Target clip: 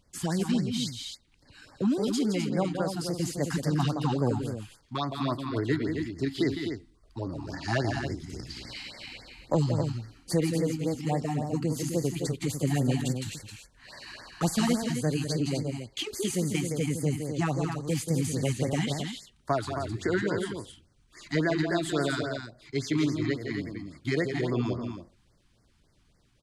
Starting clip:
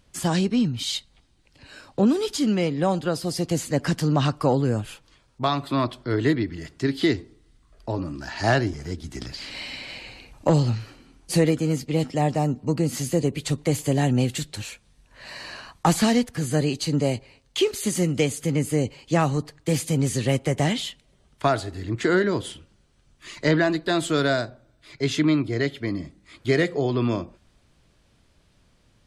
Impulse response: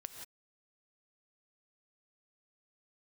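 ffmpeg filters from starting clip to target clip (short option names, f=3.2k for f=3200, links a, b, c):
-af "aecho=1:1:186.6|282.8:0.447|0.447,atempo=1.1,afftfilt=real='re*(1-between(b*sr/1024,470*pow(3200/470,0.5+0.5*sin(2*PI*3.6*pts/sr))/1.41,470*pow(3200/470,0.5+0.5*sin(2*PI*3.6*pts/sr))*1.41))':imag='im*(1-between(b*sr/1024,470*pow(3200/470,0.5+0.5*sin(2*PI*3.6*pts/sr))/1.41,470*pow(3200/470,0.5+0.5*sin(2*PI*3.6*pts/sr))*1.41))':win_size=1024:overlap=0.75,volume=-6dB"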